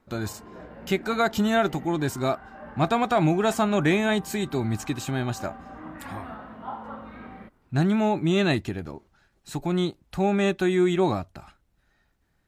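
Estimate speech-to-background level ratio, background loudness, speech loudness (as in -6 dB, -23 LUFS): 17.5 dB, -42.5 LUFS, -25.0 LUFS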